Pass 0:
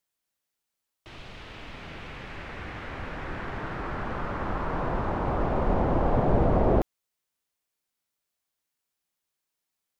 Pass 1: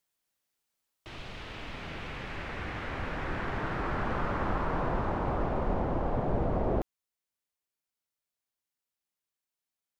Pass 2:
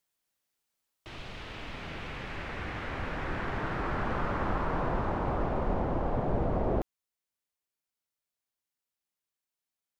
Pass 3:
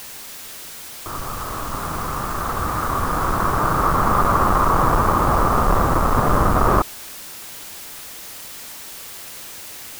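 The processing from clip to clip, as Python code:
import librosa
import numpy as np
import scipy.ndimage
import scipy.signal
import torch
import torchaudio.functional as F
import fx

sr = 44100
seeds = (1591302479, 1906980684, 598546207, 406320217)

y1 = fx.rider(x, sr, range_db=4, speed_s=0.5)
y1 = F.gain(torch.from_numpy(y1), -3.0).numpy()
y2 = y1
y3 = fx.halfwave_hold(y2, sr)
y3 = fx.lowpass_res(y3, sr, hz=1200.0, q=5.8)
y3 = fx.dmg_noise_colour(y3, sr, seeds[0], colour='white', level_db=-42.0)
y3 = F.gain(torch.from_numpy(y3), 6.0).numpy()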